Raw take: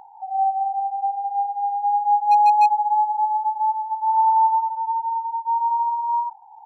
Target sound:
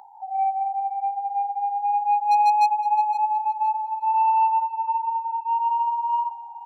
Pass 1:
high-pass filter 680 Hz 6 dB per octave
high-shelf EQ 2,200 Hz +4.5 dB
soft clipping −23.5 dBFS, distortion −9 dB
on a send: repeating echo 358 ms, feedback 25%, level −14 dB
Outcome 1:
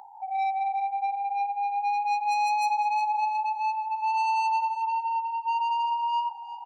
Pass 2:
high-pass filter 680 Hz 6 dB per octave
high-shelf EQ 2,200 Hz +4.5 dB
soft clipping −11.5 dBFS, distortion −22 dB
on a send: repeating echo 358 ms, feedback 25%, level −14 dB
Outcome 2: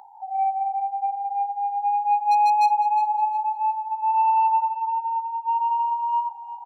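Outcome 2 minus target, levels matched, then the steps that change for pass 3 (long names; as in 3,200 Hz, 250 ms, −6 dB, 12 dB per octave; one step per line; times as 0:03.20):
echo 157 ms early
change: repeating echo 515 ms, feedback 25%, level −14 dB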